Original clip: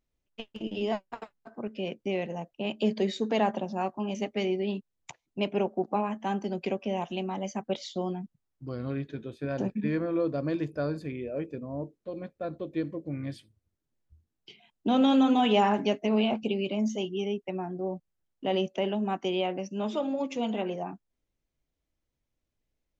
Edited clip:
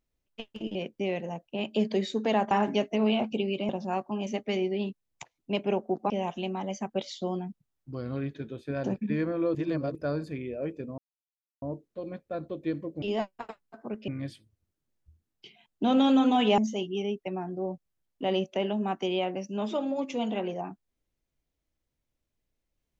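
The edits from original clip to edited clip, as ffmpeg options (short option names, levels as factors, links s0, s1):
-filter_complex "[0:a]asplit=11[s0][s1][s2][s3][s4][s5][s6][s7][s8][s9][s10];[s0]atrim=end=0.752[s11];[s1]atrim=start=1.808:end=3.572[s12];[s2]atrim=start=15.618:end=16.802[s13];[s3]atrim=start=3.568:end=5.982[s14];[s4]atrim=start=6.838:end=10.292[s15];[s5]atrim=start=10.288:end=10.692,asetpts=PTS-STARTPTS,areverse[s16];[s6]atrim=start=10.688:end=11.72,asetpts=PTS-STARTPTS,afade=t=out:st=1.028:d=0.004:c=hsin,apad=pad_dur=0.64[s17];[s7]atrim=start=11.72:end=13.122,asetpts=PTS-STARTPTS,afade=t=in:d=0.004:c=hsin[s18];[s8]atrim=start=0.748:end=1.812[s19];[s9]atrim=start=13.118:end=15.622[s20];[s10]atrim=start=16.798[s21];[s11][s12]acrossfade=d=0.004:c1=hsin:c2=hsin[s22];[s22][s13]acrossfade=d=0.004:c1=hsin:c2=hsin[s23];[s23][s14]acrossfade=d=0.004:c1=hsin:c2=hsin[s24];[s24][s15]acrossfade=d=0.004:c1=hsin:c2=hsin[s25];[s25][s16]acrossfade=d=0.004:c1=hsin:c2=hsin[s26];[s17][s18]concat=n=2:v=0:a=1[s27];[s26][s27]acrossfade=d=0.004:c1=hsin:c2=hsin[s28];[s28][s19]acrossfade=d=0.004:c1=hsin:c2=hsin[s29];[s29][s20]acrossfade=d=0.004:c1=hsin:c2=hsin[s30];[s30][s21]acrossfade=d=0.004:c1=hsin:c2=hsin"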